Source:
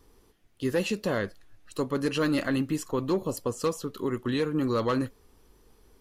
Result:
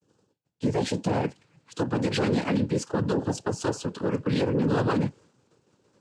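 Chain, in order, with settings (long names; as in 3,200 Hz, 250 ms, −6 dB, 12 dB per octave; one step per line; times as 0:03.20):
downward expander −51 dBFS
parametric band 2,100 Hz −9.5 dB 1 octave, from 0:01.24 −2 dB
cochlear-implant simulation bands 8
low-shelf EQ 170 Hz +7.5 dB
brickwall limiter −20 dBFS, peak gain reduction 9 dB
level +4 dB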